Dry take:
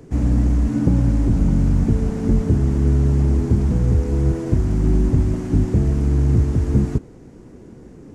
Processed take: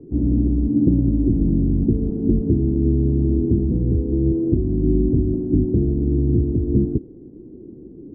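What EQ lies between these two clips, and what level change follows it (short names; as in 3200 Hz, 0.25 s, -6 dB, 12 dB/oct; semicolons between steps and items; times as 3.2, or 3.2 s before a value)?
synth low-pass 340 Hz, resonance Q 3.5; -4.0 dB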